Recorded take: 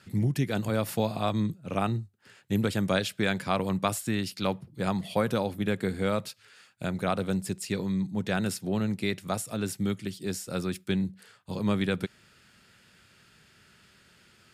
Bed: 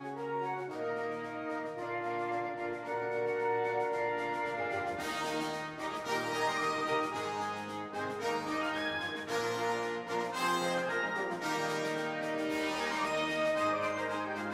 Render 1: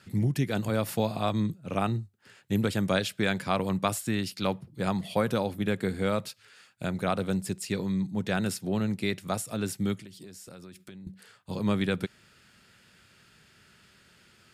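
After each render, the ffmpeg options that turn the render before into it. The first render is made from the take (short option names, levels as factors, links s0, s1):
-filter_complex "[0:a]asettb=1/sr,asplit=3[s0][s1][s2];[s0]atrim=end=10.004[s3];[s1]atrim=start=10:end=11.07,asetpts=PTS-STARTPTS,afade=t=in:d=0.004:c=qsin,afade=t=out:st=1.066:d=0.004:c=qsin,acompressor=threshold=0.00794:ratio=16:attack=3.2:release=140:knee=1:detection=peak[s4];[s2]atrim=start=11.066[s5];[s3][s4]acrossfade=d=0.004:c1=hsin:c2=qsin[s6];[s6][s5]acrossfade=d=0.004:c1=qsin:c2=hsin"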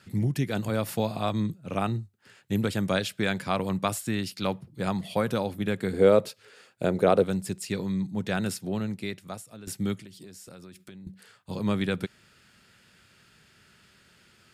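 -filter_complex "[0:a]asettb=1/sr,asplit=3[s0][s1][s2];[s0]atrim=end=5.934[s3];[s1]atrim=start=5.93:end=7.24,asetpts=PTS-STARTPTS,afade=t=in:d=0.004:c=qsin,afade=t=out:st=1.306:d=0.004:c=qsin,equalizer=f=450:t=o:w=1.3:g=13.5[s4];[s2]atrim=start=7.236[s5];[s3][s4]acrossfade=d=0.004:c1=hsin:c2=qsin[s6];[s6][s5]acrossfade=d=0.004:c1=qsin:c2=hsin,asplit=2[s7][s8];[s7]atrim=end=9.67,asetpts=PTS-STARTPTS,afade=t=out:st=8.53:d=1.14:silence=0.149624[s9];[s8]atrim=start=9.67,asetpts=PTS-STARTPTS,afade=t=in:d=0.004:c=hsin:silence=0.149624[s10];[s9][s10]concat=n=2:v=0:a=1"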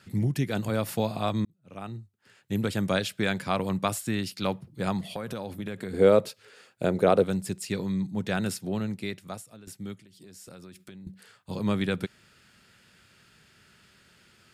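-filter_complex "[0:a]asettb=1/sr,asplit=3[s0][s1][s2];[s0]atrim=end=5.054[s3];[s1]atrim=start=5.05:end=5.94,asetpts=PTS-STARTPTS,afade=t=in:d=0.004:c=qsin,afade=t=out:st=0.886:d=0.004:c=qsin,acompressor=threshold=0.0316:ratio=6:attack=3.2:release=140:knee=1:detection=peak[s4];[s2]atrim=start=5.936[s5];[s3][s4]acrossfade=d=0.004:c1=hsin:c2=qsin[s6];[s6][s5]acrossfade=d=0.004:c1=qsin:c2=hsin,asplit=4[s7][s8][s9][s10];[s7]atrim=end=1.45,asetpts=PTS-STARTPTS,afade=t=out:st=1.446:d=0.004:c=hsin[s11];[s8]atrim=start=1.45:end=9.74,asetpts=PTS-STARTPTS,afade=t=in:d=1.36,afade=t=out:st=7.93:d=0.36:silence=0.354813[s12];[s9]atrim=start=9.74:end=10.09,asetpts=PTS-STARTPTS,volume=0.355[s13];[s10]atrim=start=10.09,asetpts=PTS-STARTPTS,afade=t=in:d=0.36:silence=0.354813[s14];[s11][s12][s13][s14]concat=n=4:v=0:a=1"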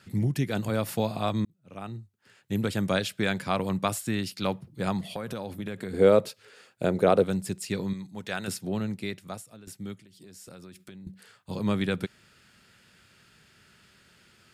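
-filter_complex "[0:a]asettb=1/sr,asplit=3[s0][s1][s2];[s0]atrim=end=7.934[s3];[s1]atrim=start=7.93:end=8.48,asetpts=PTS-STARTPTS,afade=t=in:d=0.004:c=qsin,afade=t=out:st=0.546:d=0.004:c=qsin,equalizer=f=140:w=0.31:g=-10.5[s4];[s2]atrim=start=8.476[s5];[s3][s4]acrossfade=d=0.004:c1=hsin:c2=qsin[s6];[s6][s5]acrossfade=d=0.004:c1=qsin:c2=hsin"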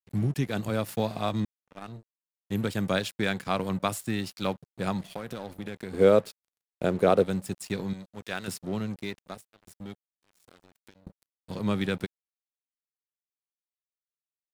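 -af "aeval=exprs='sgn(val(0))*max(abs(val(0))-0.00708,0)':c=same"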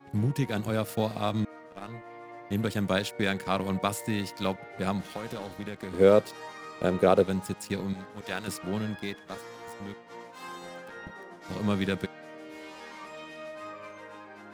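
-filter_complex "[1:a]volume=0.299[s0];[0:a][s0]amix=inputs=2:normalize=0"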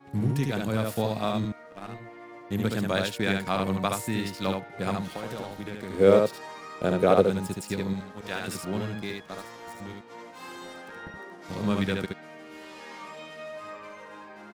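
-af "aecho=1:1:72:0.668"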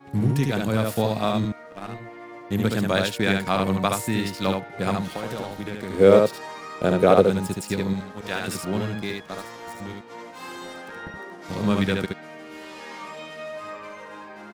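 -af "volume=1.68,alimiter=limit=0.794:level=0:latency=1"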